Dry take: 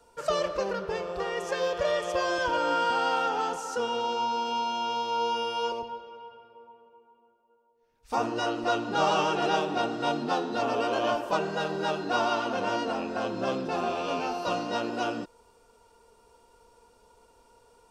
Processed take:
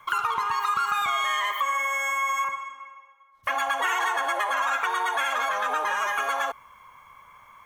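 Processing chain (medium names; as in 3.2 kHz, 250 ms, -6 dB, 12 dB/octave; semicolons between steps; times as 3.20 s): peaking EQ 460 Hz +12.5 dB 1.4 oct; compression 3:1, threshold -24 dBFS, peak gain reduction 8.5 dB; speed mistake 33 rpm record played at 78 rpm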